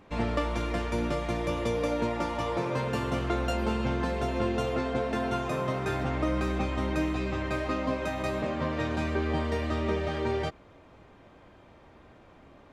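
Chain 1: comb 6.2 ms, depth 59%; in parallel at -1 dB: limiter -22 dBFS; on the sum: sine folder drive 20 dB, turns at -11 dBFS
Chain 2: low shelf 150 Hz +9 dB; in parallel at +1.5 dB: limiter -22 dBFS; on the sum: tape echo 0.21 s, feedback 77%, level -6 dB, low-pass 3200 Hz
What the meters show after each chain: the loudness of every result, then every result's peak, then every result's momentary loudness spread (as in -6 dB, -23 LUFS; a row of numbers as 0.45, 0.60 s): -12.5, -21.5 LUFS; -9.5, -8.5 dBFS; 12, 4 LU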